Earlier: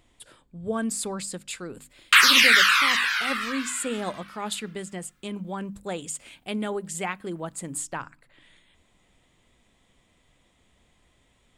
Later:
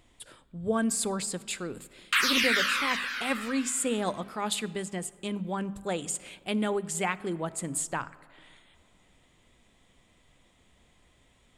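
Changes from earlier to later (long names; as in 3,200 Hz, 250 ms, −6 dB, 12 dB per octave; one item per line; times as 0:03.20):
background −11.0 dB
reverb: on, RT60 2.2 s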